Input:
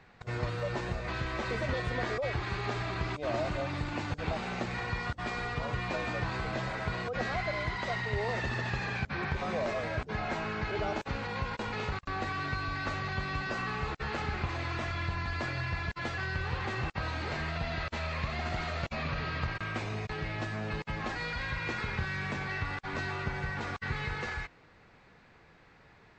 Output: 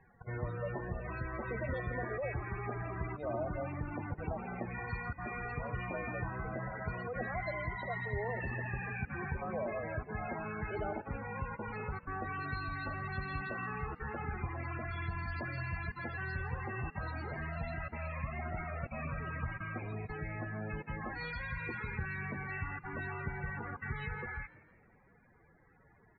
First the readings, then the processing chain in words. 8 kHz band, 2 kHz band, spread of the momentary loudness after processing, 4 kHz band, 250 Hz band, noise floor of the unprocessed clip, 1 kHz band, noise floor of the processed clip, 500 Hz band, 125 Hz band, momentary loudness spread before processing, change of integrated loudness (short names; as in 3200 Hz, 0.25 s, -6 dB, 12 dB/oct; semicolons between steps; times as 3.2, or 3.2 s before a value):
under -25 dB, -5.5 dB, 3 LU, -18.0 dB, -4.5 dB, -59 dBFS, -5.5 dB, -64 dBFS, -4.5 dB, -4.0 dB, 3 LU, -5.0 dB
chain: loudest bins only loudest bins 32; frequency-shifting echo 0.166 s, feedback 46%, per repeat +55 Hz, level -19.5 dB; gain -4 dB